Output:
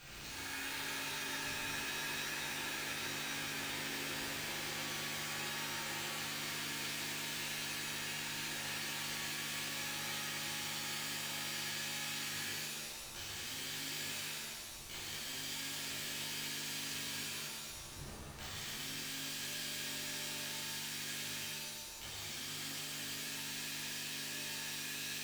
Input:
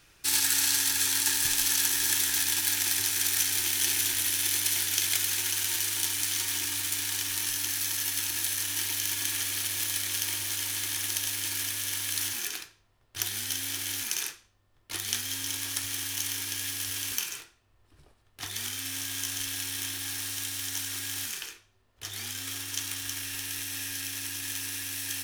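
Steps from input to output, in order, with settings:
high-shelf EQ 7,800 Hz +8.5 dB
treble cut that deepens with the level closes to 1,800 Hz
downward compressor, threshold −54 dBFS, peak gain reduction 25 dB
bad sample-rate conversion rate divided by 4×, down filtered, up hold
reverb with rising layers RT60 1.8 s, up +7 semitones, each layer −2 dB, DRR −10.5 dB
level +1.5 dB

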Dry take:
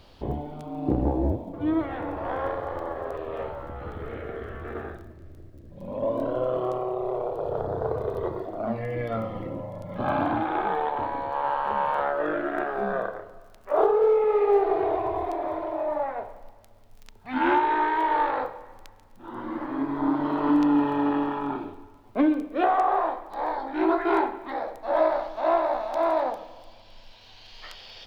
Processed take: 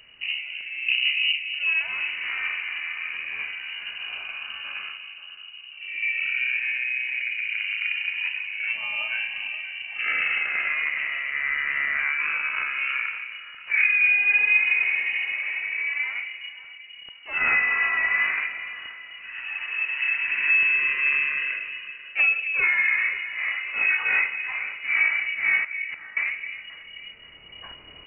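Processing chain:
0:25.64–0:26.17: gate with flip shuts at −21 dBFS, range −34 dB
delay that swaps between a low-pass and a high-pass 265 ms, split 940 Hz, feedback 60%, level −9 dB
voice inversion scrambler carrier 2,900 Hz

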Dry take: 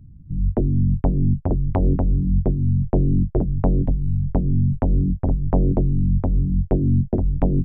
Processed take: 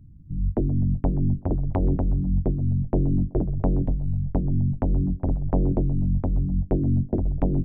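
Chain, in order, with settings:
parametric band 310 Hz +5 dB 0.21 octaves
feedback echo with a band-pass in the loop 126 ms, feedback 46%, band-pass 710 Hz, level −15.5 dB
level −4 dB

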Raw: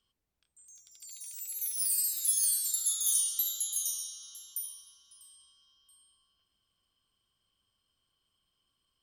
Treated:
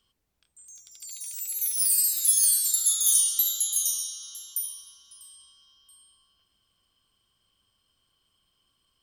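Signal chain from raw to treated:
0:04.02–0:04.77: low-shelf EQ 440 Hz −6 dB
level +7 dB

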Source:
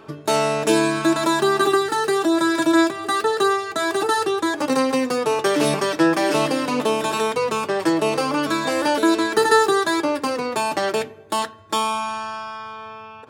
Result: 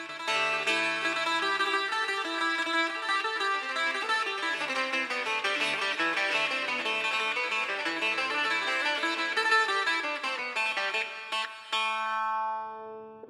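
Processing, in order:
low-shelf EQ 140 Hz +4 dB
backwards echo 1,068 ms −8.5 dB
reverb whose tail is shaped and stops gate 430 ms flat, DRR 9.5 dB
band-pass filter sweep 2,400 Hz → 370 Hz, 0:11.83–0:13.06
level +3 dB

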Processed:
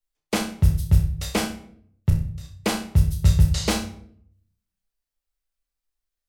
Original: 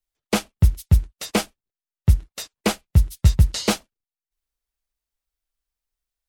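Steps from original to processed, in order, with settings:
0:02.10–0:02.54: output level in coarse steps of 24 dB
on a send: flutter between parallel walls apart 5.4 metres, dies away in 0.32 s
on the sum: rectangular room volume 95 cubic metres, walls mixed, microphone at 0.38 metres
level −3.5 dB

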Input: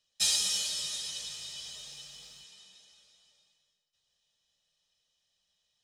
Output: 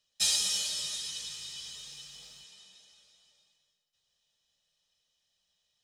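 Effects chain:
0:00.95–0:02.15: parametric band 650 Hz −11 dB 0.39 octaves

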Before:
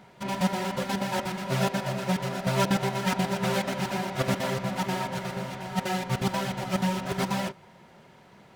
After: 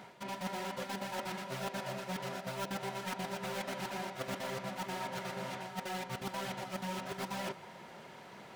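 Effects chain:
stylus tracing distortion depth 0.12 ms
low-shelf EQ 170 Hz −12 dB
reversed playback
downward compressor 4 to 1, threshold −43 dBFS, peak gain reduction 18 dB
reversed playback
level +4 dB

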